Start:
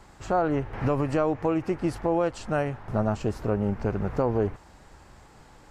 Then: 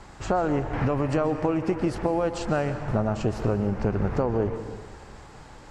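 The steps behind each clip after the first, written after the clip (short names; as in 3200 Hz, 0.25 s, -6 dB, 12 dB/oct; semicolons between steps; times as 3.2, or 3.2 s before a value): LPF 8900 Hz 12 dB/oct; compressor, threshold -26 dBFS, peak gain reduction 7 dB; on a send at -9.5 dB: reverb RT60 1.7 s, pre-delay 0.111 s; on the sum: gain +5.5 dB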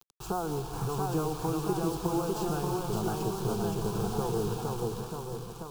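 requantised 6-bit, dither none; echoes that change speed 0.697 s, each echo +1 st, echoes 3; fixed phaser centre 390 Hz, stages 8; gain -5 dB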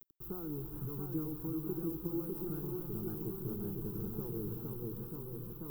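EQ curve 200 Hz 0 dB, 310 Hz +5 dB, 710 Hz -19 dB, 1300 Hz -10 dB, 7400 Hz -23 dB, 15000 Hz +13 dB; reverse; upward compressor, threshold -28 dBFS; reverse; gain -8.5 dB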